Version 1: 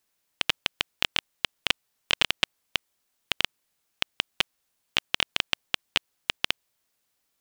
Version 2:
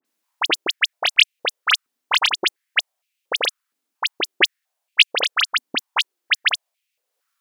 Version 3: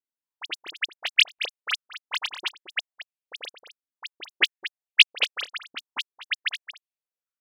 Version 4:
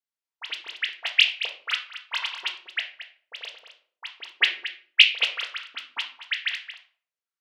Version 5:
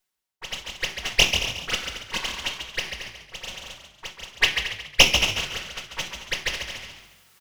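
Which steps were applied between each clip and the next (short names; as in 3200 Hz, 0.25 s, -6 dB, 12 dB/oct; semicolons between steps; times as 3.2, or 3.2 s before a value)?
transient shaper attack +7 dB, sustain -3 dB; dispersion highs, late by 51 ms, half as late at 2300 Hz; stepped high-pass 4.3 Hz 260–2500 Hz; gain -1 dB
on a send: echo 0.224 s -5 dB; on the sum: upward expander 2.5:1, over -24 dBFS
weighting filter A; reverb RT60 0.50 s, pre-delay 4 ms, DRR 2 dB; gain -2 dB
minimum comb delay 5.4 ms; reverse; upward compressor, threshold -33 dBFS; reverse; frequency-shifting echo 0.14 s, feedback 36%, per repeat +46 Hz, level -7 dB; gain +1.5 dB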